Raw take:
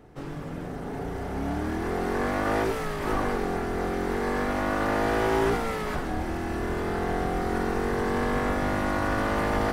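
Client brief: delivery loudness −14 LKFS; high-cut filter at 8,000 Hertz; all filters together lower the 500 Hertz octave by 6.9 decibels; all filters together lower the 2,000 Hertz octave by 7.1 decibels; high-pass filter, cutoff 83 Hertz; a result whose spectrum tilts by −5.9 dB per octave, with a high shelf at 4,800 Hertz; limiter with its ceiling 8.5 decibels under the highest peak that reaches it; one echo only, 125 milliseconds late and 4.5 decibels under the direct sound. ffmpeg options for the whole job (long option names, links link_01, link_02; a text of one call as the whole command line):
ffmpeg -i in.wav -af "highpass=83,lowpass=8000,equalizer=frequency=500:width_type=o:gain=-9,equalizer=frequency=2000:width_type=o:gain=-8,highshelf=frequency=4800:gain=-6.5,alimiter=level_in=3dB:limit=-24dB:level=0:latency=1,volume=-3dB,aecho=1:1:125:0.596,volume=21dB" out.wav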